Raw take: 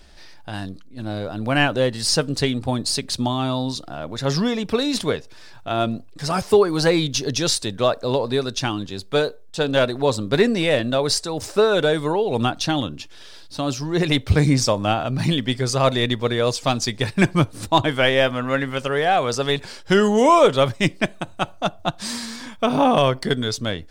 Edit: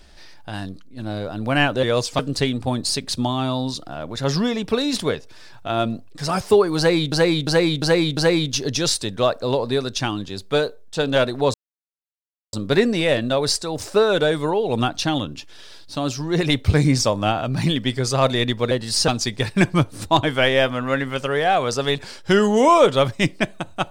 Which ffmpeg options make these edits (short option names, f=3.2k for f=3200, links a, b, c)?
-filter_complex "[0:a]asplit=10[a][b][c][d][e][f][g][h][i][j];[a]atrim=end=1.832[k];[b]atrim=start=16.328:end=16.692[l];[c]atrim=start=2.198:end=7.132[m];[d]atrim=start=6.778:end=7.132[n];[e]atrim=start=6.778:end=7.132[o];[f]atrim=start=6.778:end=7.132[p];[g]atrim=start=6.778:end=10.15,asetpts=PTS-STARTPTS,afade=t=out:st=3.368:d=0.004:c=hsin,apad=pad_dur=0.99[q];[h]atrim=start=10.15:end=16.332,asetpts=PTS-STARTPTS,afade=t=in:d=0.004:c=hsin[r];[i]atrim=start=1.828:end=2.202[s];[j]atrim=start=16.688[t];[k][l]acrossfade=d=0.004:c1=hsin:c2=hsin[u];[u][m]acrossfade=d=0.004:c1=hsin:c2=hsin[v];[v][n]acrossfade=d=0.004:c1=hsin:c2=hsin[w];[w][o]acrossfade=d=0.004:c1=hsin:c2=hsin[x];[x][p]acrossfade=d=0.004:c1=hsin:c2=hsin[y];[q][r]concat=n=2:v=0:a=1[z];[y][z]acrossfade=d=0.004:c1=hsin:c2=hsin[aa];[aa][s]acrossfade=d=0.004:c1=hsin:c2=hsin[ab];[ab][t]acrossfade=d=0.004:c1=hsin:c2=hsin"